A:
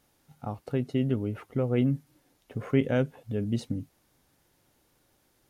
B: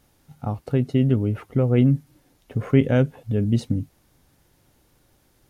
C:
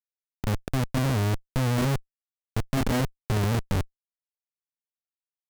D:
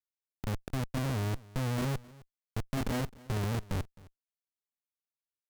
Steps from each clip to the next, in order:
bass shelf 160 Hz +8.5 dB; trim +4.5 dB
Schmitt trigger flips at -23.5 dBFS
delay 262 ms -22 dB; trim -7.5 dB

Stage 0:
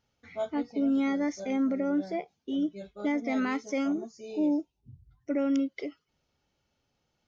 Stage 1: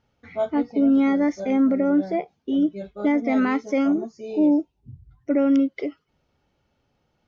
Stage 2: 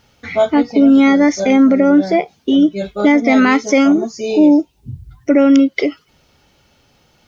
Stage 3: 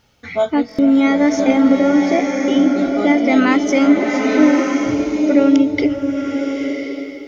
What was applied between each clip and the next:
low-pass 1.9 kHz 6 dB/octave; trim +8.5 dB
in parallel at +2 dB: compression, threshold -28 dBFS, peak gain reduction 12 dB; on the sum: treble shelf 2.4 kHz +12 dB; trim +6 dB
buffer glitch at 0.67 s, samples 1024, times 4; swelling reverb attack 1070 ms, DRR 1.5 dB; trim -3.5 dB

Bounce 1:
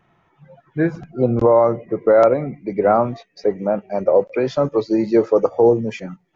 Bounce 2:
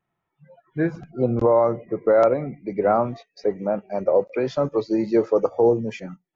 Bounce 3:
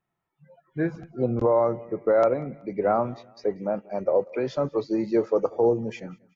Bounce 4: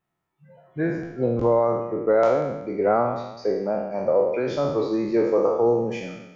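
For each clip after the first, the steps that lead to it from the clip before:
spectral noise reduction 15 dB; trim -4 dB
feedback delay 189 ms, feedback 38%, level -24 dB; trim -3.5 dB
spectral sustain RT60 0.99 s

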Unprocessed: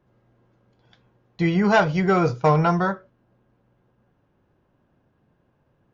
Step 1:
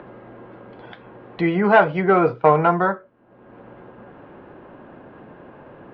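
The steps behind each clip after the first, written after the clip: three-band isolator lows -15 dB, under 230 Hz, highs -20 dB, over 3.7 kHz; upward compressor, threshold -29 dBFS; distance through air 270 m; trim +5.5 dB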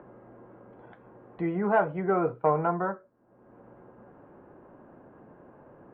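low-pass 1.4 kHz 12 dB/octave; trim -9 dB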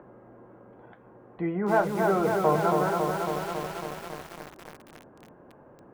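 bit-crushed delay 276 ms, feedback 80%, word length 7-bit, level -3 dB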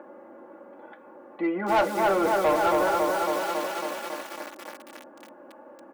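high-pass 340 Hz 12 dB/octave; comb 3.5 ms, depth 95%; saturation -20 dBFS, distortion -12 dB; trim +3.5 dB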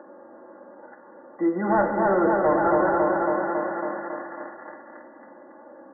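brick-wall FIR low-pass 2 kHz; dynamic bell 190 Hz, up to +6 dB, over -42 dBFS, Q 0.74; spring tank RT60 2 s, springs 44/59 ms, chirp 20 ms, DRR 5 dB

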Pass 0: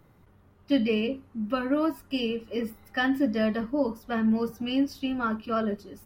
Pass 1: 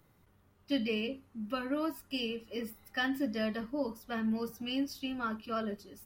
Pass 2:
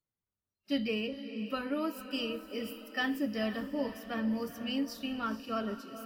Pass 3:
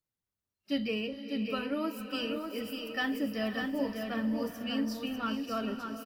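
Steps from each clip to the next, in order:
treble shelf 2.6 kHz +9.5 dB; trim -8.5 dB
echo that smears into a reverb 470 ms, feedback 48%, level -11 dB; spectral noise reduction 29 dB
delay 596 ms -5.5 dB

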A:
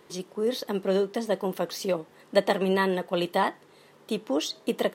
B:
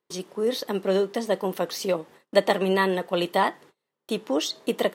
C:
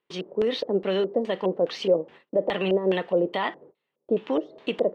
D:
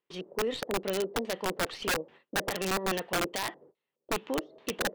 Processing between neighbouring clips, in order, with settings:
gate -49 dBFS, range -31 dB; bass shelf 250 Hz -4 dB; trim +3 dB
peak limiter -17 dBFS, peak gain reduction 11 dB; LFO low-pass square 2.4 Hz 530–2900 Hz
tracing distortion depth 0.032 ms; integer overflow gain 16.5 dB; trim -6.5 dB

